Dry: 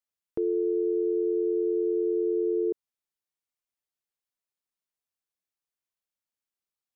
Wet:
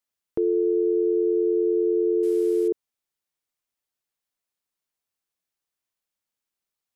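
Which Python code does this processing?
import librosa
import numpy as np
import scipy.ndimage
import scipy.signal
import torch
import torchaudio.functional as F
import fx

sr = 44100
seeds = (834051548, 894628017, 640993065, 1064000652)

y = fx.delta_mod(x, sr, bps=64000, step_db=-46.0, at=(2.23, 2.68))
y = F.gain(torch.from_numpy(y), 4.5).numpy()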